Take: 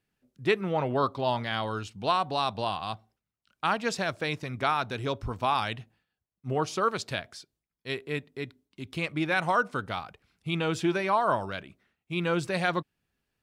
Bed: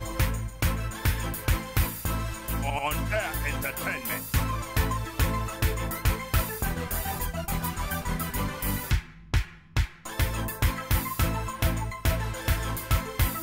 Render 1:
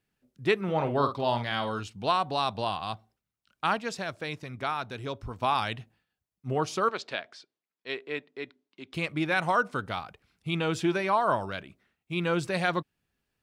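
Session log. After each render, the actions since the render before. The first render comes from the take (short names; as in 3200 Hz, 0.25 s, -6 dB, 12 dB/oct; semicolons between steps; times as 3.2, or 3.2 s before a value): 0.63–1.8 doubler 50 ms -9 dB; 3.79–5.42 gain -4.5 dB; 6.89–8.94 BPF 320–4400 Hz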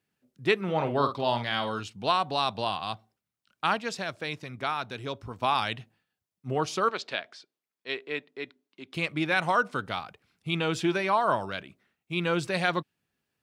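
dynamic EQ 3400 Hz, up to +3 dB, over -45 dBFS, Q 0.76; HPF 98 Hz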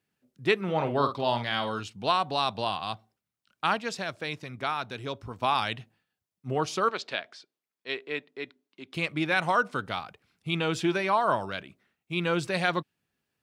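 nothing audible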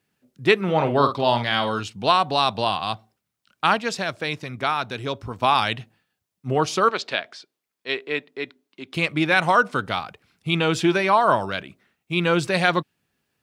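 gain +7 dB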